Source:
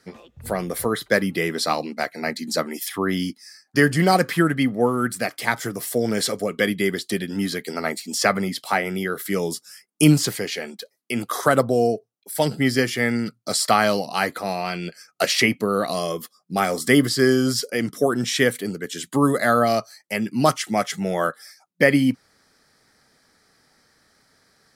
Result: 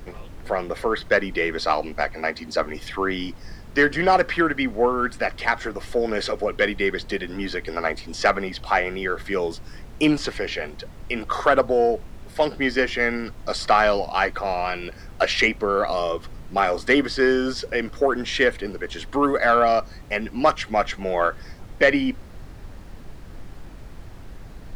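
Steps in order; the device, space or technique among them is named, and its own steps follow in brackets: aircraft cabin announcement (band-pass 380–3100 Hz; saturation -9.5 dBFS, distortion -19 dB; brown noise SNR 13 dB); 2.16–2.59 s: high-pass 110 Hz 6 dB/octave; trim +3 dB

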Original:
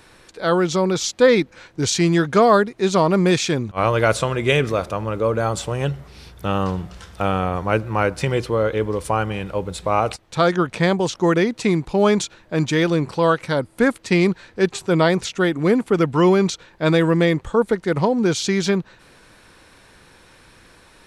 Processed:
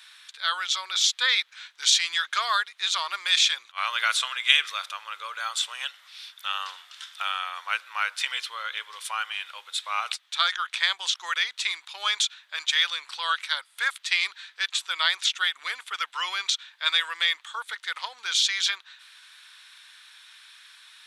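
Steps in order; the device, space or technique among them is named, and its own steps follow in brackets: headphones lying on a table (high-pass 1.3 kHz 24 dB/octave; peaking EQ 3.5 kHz +10.5 dB 0.47 oct); trim -1 dB

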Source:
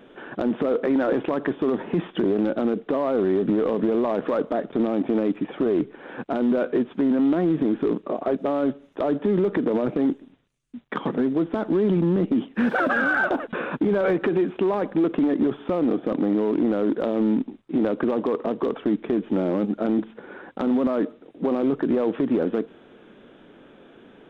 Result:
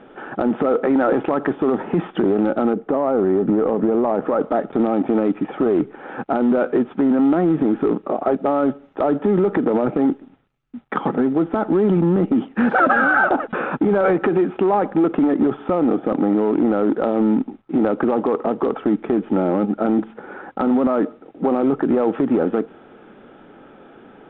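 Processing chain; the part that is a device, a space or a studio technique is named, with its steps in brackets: inside a cardboard box (low-pass 2.6 kHz 12 dB/octave; small resonant body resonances 810/1300 Hz, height 9 dB, ringing for 30 ms); 2.73–4.41 s: treble shelf 2.1 kHz -10 dB; trim +4 dB

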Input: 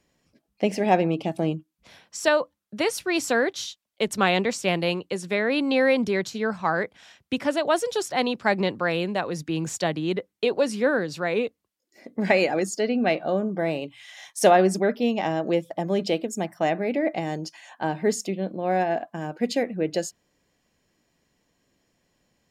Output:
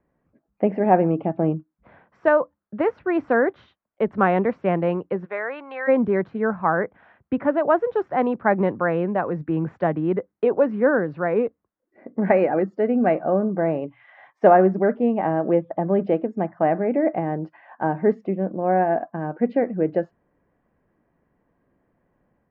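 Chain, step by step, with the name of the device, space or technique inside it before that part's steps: 5.24–5.87 s: high-pass 630 Hz -> 1.4 kHz 12 dB/octave; action camera in a waterproof case (low-pass 1.6 kHz 24 dB/octave; level rider gain up to 4 dB; AAC 96 kbps 32 kHz)

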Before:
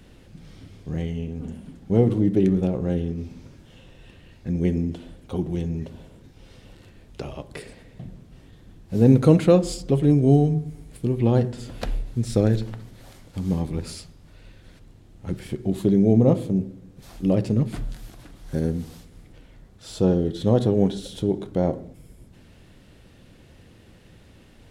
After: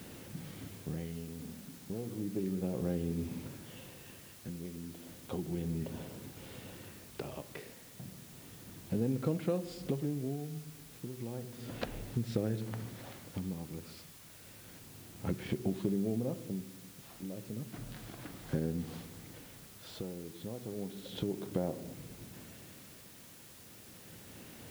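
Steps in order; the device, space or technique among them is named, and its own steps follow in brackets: medium wave at night (band-pass 110–3600 Hz; compression 6:1, threshold -33 dBFS, peak gain reduction 22 dB; tremolo 0.32 Hz, depth 71%; whistle 10 kHz -72 dBFS; white noise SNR 16 dB); trim +2.5 dB

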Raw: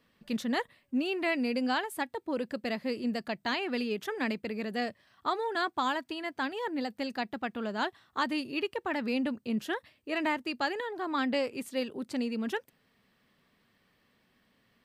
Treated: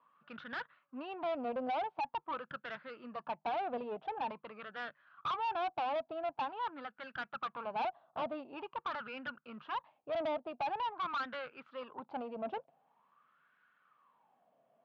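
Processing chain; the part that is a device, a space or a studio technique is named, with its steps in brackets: wah-wah guitar rig (wah-wah 0.46 Hz 660–1500 Hz, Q 8.3; valve stage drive 49 dB, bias 0.55; cabinet simulation 110–3500 Hz, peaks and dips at 150 Hz +10 dB, 390 Hz -4 dB, 1.9 kHz -10 dB); trim +17 dB

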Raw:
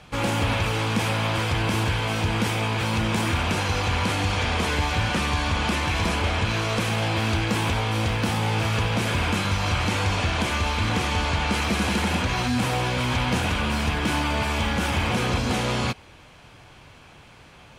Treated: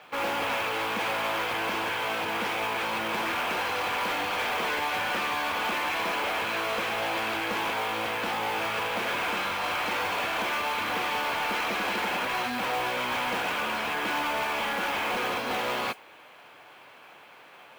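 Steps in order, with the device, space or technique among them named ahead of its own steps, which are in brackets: carbon microphone (band-pass 470–3000 Hz; saturation -24 dBFS, distortion -16 dB; modulation noise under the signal 18 dB); trim +1.5 dB

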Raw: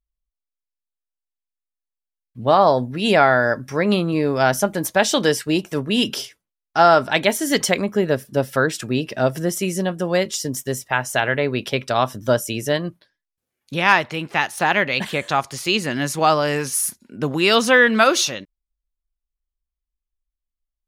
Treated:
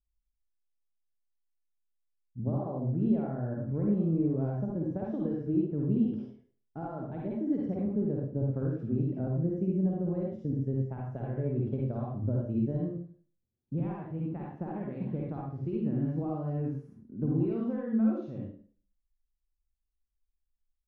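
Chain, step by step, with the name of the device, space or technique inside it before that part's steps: television next door (compression, threshold -20 dBFS, peak gain reduction 11 dB; low-pass 250 Hz 12 dB/octave; reverberation RT60 0.45 s, pre-delay 47 ms, DRR -4 dB); trim -2.5 dB

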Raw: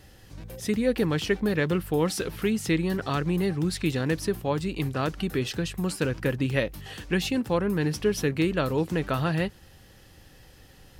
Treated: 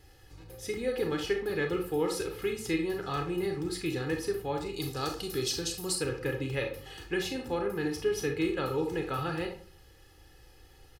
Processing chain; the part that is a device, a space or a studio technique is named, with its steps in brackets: 4.73–5.95 s: resonant high shelf 3.4 kHz +10 dB, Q 1.5; microphone above a desk (comb 2.4 ms, depth 74%; reverberation RT60 0.45 s, pre-delay 28 ms, DRR 3 dB); trim -8.5 dB

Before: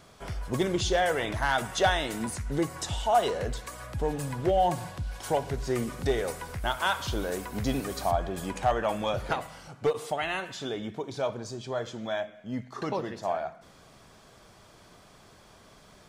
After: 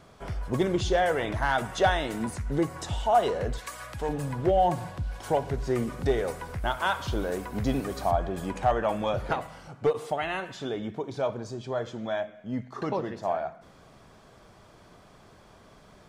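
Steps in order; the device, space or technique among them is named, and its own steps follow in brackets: 3.58–4.09 s: tilt shelf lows -7.5 dB, about 870 Hz; behind a face mask (treble shelf 2.5 kHz -8 dB); trim +2 dB

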